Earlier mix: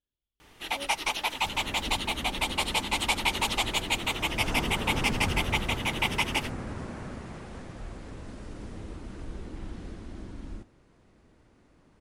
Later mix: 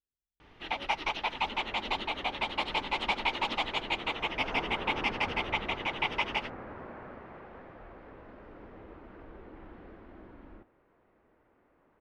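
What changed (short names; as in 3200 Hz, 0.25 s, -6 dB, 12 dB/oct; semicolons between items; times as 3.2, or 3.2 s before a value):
speech -7.5 dB; second sound: add three-band isolator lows -14 dB, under 350 Hz, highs -18 dB, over 2600 Hz; master: add air absorption 250 m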